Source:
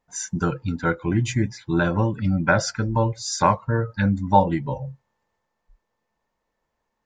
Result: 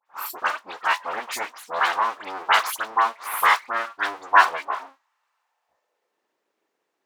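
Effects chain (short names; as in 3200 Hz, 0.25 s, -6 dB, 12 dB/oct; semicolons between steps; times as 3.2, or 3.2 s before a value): full-wave rectifier; dispersion highs, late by 63 ms, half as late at 2300 Hz; high-pass sweep 1000 Hz -> 350 Hz, 5.37–6.23; gain +3 dB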